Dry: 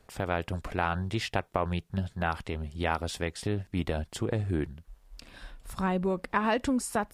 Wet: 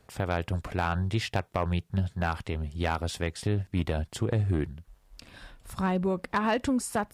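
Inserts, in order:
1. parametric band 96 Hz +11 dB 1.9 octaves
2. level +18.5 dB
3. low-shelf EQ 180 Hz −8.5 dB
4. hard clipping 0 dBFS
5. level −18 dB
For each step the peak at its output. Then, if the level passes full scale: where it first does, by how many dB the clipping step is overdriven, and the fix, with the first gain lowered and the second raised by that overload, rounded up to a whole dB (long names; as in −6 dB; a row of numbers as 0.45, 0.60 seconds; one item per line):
−9.0, +9.5, +6.5, 0.0, −18.0 dBFS
step 2, 6.5 dB
step 2 +11.5 dB, step 5 −11 dB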